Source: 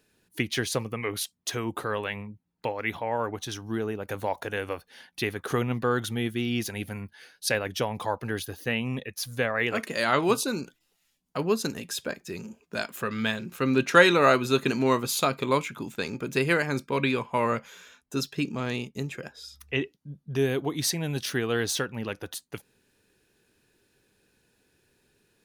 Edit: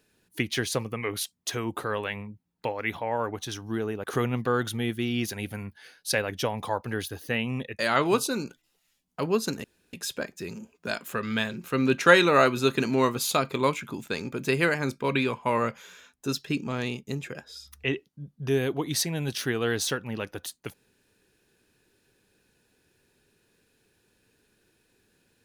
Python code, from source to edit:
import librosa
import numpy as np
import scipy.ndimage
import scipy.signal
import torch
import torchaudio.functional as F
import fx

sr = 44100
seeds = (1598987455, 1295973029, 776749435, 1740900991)

y = fx.edit(x, sr, fx.cut(start_s=4.04, length_s=1.37),
    fx.cut(start_s=9.16, length_s=0.8),
    fx.insert_room_tone(at_s=11.81, length_s=0.29), tone=tone)